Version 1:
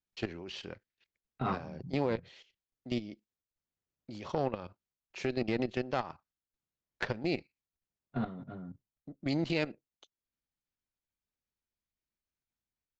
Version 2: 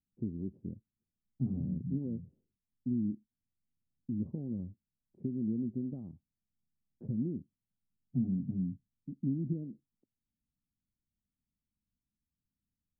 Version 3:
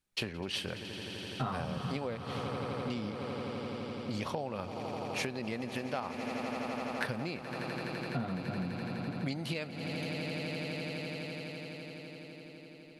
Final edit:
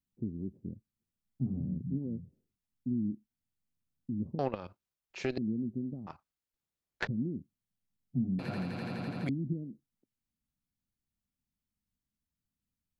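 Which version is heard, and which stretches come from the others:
2
0:04.39–0:05.38: punch in from 1
0:06.07–0:07.07: punch in from 1
0:08.39–0:09.29: punch in from 3

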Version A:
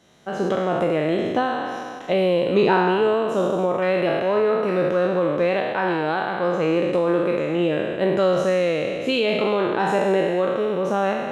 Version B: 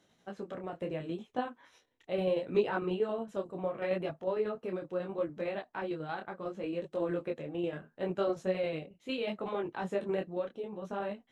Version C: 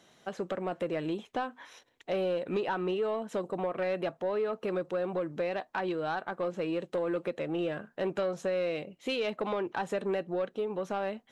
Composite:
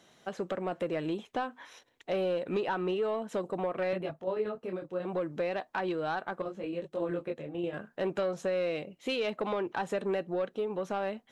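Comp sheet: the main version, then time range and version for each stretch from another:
C
0:03.93–0:05.05: punch in from B
0:06.42–0:07.74: punch in from B
not used: A

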